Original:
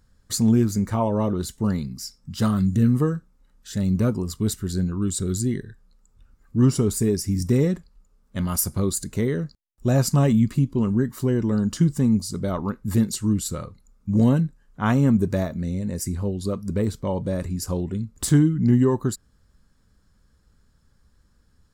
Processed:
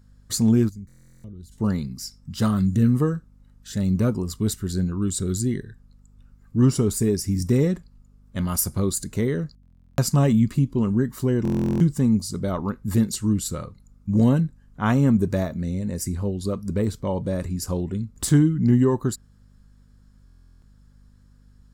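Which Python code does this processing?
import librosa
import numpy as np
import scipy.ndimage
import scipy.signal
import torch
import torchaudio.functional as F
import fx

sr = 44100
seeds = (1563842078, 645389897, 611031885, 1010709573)

y = fx.tone_stack(x, sr, knobs='10-0-1', at=(0.68, 1.51), fade=0.02)
y = fx.add_hum(y, sr, base_hz=50, snr_db=30)
y = fx.buffer_glitch(y, sr, at_s=(0.87, 9.61, 11.43, 20.25), block=1024, repeats=15)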